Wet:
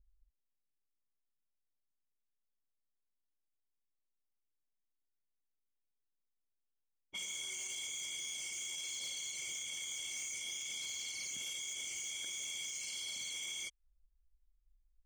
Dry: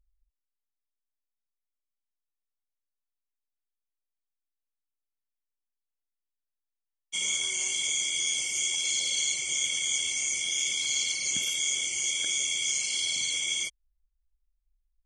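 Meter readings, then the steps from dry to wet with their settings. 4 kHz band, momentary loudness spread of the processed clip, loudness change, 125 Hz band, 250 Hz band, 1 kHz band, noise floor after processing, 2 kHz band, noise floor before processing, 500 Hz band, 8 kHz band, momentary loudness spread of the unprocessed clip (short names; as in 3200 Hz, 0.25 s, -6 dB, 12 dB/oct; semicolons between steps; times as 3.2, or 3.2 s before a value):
-13.0 dB, 0 LU, -13.0 dB, n/a, -12.0 dB, -9.0 dB, -84 dBFS, -12.5 dB, under -85 dBFS, -11.5 dB, -13.0 dB, 1 LU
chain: low-pass opened by the level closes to 410 Hz, open at -26.5 dBFS; compressor 2.5:1, threshold -44 dBFS, peak gain reduction 13 dB; limiter -33.5 dBFS, peak gain reduction 5.5 dB; soft clip -38 dBFS, distortion -17 dB; gain +2.5 dB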